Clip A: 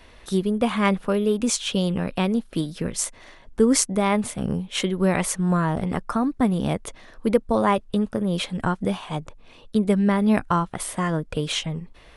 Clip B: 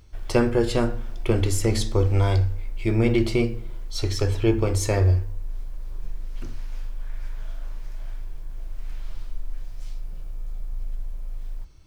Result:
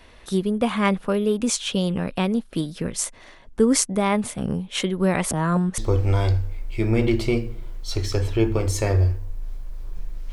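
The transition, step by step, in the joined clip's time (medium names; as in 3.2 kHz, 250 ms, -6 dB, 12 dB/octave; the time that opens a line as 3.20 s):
clip A
5.31–5.78 s: reverse
5.78 s: go over to clip B from 1.85 s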